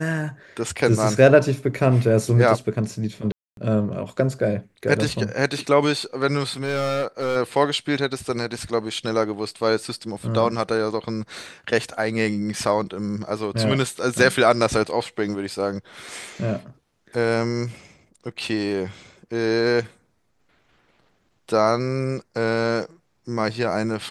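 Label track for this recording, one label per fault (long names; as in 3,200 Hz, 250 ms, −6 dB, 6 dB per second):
3.320000	3.570000	drop-out 252 ms
6.440000	7.370000	clipping −19 dBFS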